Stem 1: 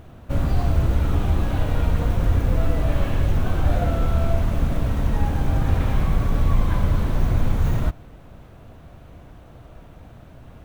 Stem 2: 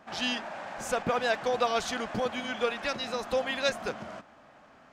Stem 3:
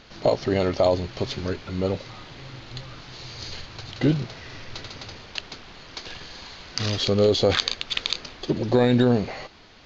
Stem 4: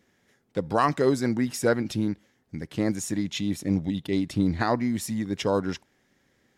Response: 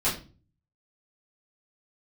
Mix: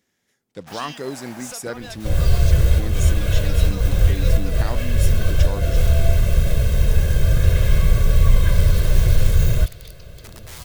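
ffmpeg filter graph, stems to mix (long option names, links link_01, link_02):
-filter_complex "[0:a]equalizer=frequency=950:width_type=o:width=0.48:gain=-14.5,aecho=1:1:1.9:0.96,adelay=1750,volume=0dB[link_01];[1:a]acrusher=bits=7:mix=0:aa=0.5,adelay=600,volume=-1dB[link_02];[2:a]aeval=exprs='(mod(10*val(0)+1,2)-1)/10':channel_layout=same,adelay=1750,volume=-19.5dB[link_03];[3:a]volume=-8dB,asplit=2[link_04][link_05];[link_05]apad=whole_len=546870[link_06];[link_01][link_06]sidechaincompress=threshold=-33dB:ratio=8:attack=12:release=165[link_07];[link_02][link_03]amix=inputs=2:normalize=0,acompressor=threshold=-38dB:ratio=6,volume=0dB[link_08];[link_07][link_04][link_08]amix=inputs=3:normalize=0,highshelf=frequency=3300:gain=10.5"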